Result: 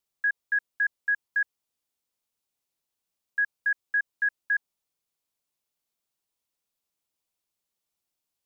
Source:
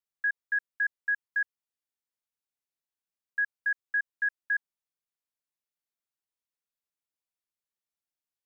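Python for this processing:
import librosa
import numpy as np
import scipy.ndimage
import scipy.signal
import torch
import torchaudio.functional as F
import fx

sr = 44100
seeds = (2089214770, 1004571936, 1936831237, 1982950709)

y = fx.peak_eq(x, sr, hz=1700.0, db=-6.0, octaves=0.77)
y = F.gain(torch.from_numpy(y), 8.5).numpy()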